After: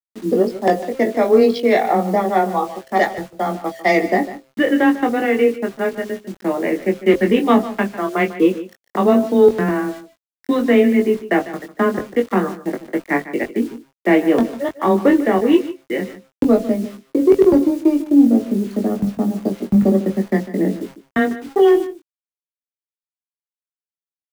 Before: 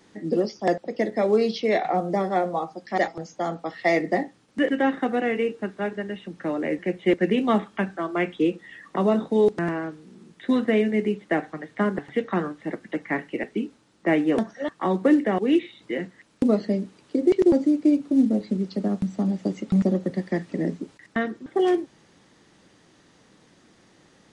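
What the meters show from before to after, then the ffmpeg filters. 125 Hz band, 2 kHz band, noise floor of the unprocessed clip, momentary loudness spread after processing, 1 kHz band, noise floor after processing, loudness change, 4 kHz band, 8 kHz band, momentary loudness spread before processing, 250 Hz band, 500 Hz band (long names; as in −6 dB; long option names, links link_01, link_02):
+4.0 dB, +6.5 dB, −58 dBFS, 11 LU, +7.5 dB, below −85 dBFS, +7.0 dB, +5.5 dB, can't be measured, 11 LU, +6.5 dB, +7.5 dB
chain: -filter_complex "[0:a]anlmdn=25.1,bandreject=frequency=129.4:width_type=h:width=4,bandreject=frequency=258.8:width_type=h:width=4,bandreject=frequency=388.2:width_type=h:width=4,bandreject=frequency=517.6:width_type=h:width=4,bandreject=frequency=647:width_type=h:width=4,acontrast=63,afreqshift=13,acrusher=bits=6:mix=0:aa=0.000001,asplit=2[link_01][link_02];[link_02]adelay=21,volume=-5dB[link_03];[link_01][link_03]amix=inputs=2:normalize=0,aecho=1:1:149:0.178"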